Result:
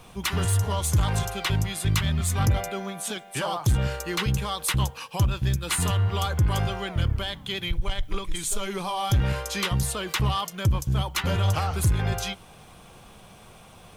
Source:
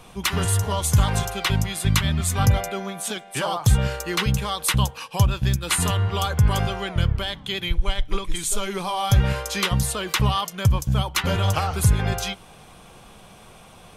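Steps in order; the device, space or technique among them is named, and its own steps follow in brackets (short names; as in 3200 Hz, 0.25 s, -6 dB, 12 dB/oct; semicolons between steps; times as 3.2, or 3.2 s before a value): open-reel tape (soft clip -14.5 dBFS, distortion -14 dB; bell 95 Hz +3 dB 1.09 oct; white noise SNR 44 dB); gain -2.5 dB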